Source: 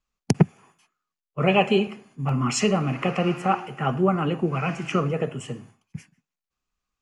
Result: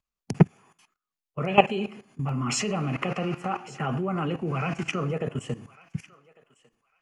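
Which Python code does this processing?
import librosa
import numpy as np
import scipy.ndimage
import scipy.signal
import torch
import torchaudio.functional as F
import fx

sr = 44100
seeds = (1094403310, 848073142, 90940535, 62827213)

p1 = fx.level_steps(x, sr, step_db=16)
p2 = p1 + fx.echo_thinned(p1, sr, ms=1150, feedback_pct=18, hz=1000.0, wet_db=-20, dry=0)
y = p2 * librosa.db_to_amplitude(4.5)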